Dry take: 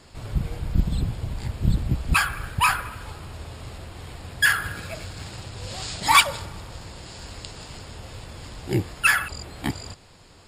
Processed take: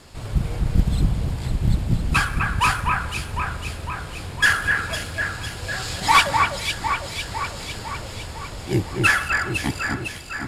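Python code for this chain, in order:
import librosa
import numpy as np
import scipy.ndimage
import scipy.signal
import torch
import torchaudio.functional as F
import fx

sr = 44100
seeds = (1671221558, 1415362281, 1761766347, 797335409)

p1 = fx.cvsd(x, sr, bps=64000)
p2 = fx.rider(p1, sr, range_db=4, speed_s=2.0)
y = p2 + fx.echo_alternate(p2, sr, ms=252, hz=2400.0, feedback_pct=77, wet_db=-3.5, dry=0)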